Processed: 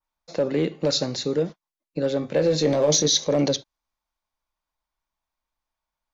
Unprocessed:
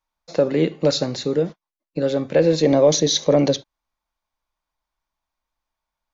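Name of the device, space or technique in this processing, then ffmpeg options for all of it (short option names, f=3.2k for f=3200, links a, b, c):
limiter into clipper: -filter_complex "[0:a]alimiter=limit=-9.5dB:level=0:latency=1:release=23,asoftclip=type=hard:threshold=-11dB,adynamicequalizer=threshold=0.0158:dfrequency=5500:dqfactor=1:tfrequency=5500:tqfactor=1:attack=5:release=100:ratio=0.375:range=2.5:mode=boostabove:tftype=bell,asettb=1/sr,asplit=3[a][b][c];[a]atrim=end=2.204[d];[b]atrim=start=2.2:end=3.08,asetpts=PTS-STARTPTS,afade=t=in:d=0.004:c=qsin,afade=t=out:st=0.876:d=0.004:c=qsin,asplit=2[e][f];[f]adelay=20,volume=-7dB[g];[e][g]amix=inputs=2:normalize=0,atrim=end_sample=38808[h];[c]atrim=start=3.076[i];[d][h]acrossfade=d=0.004:c1=hsin:c2=qsin[j];[j][i]acrossfade=d=0.004:c1=qsin:c2=hsin,volume=-3dB"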